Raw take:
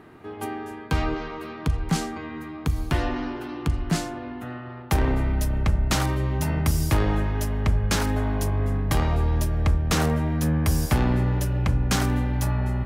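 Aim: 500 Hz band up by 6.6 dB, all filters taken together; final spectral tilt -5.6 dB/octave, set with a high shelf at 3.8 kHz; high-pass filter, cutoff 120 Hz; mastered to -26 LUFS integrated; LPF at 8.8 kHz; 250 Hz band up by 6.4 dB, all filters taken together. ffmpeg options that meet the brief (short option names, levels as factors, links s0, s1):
-af "highpass=120,lowpass=8800,equalizer=f=250:t=o:g=7,equalizer=f=500:t=o:g=6,highshelf=f=3800:g=6,volume=0.75"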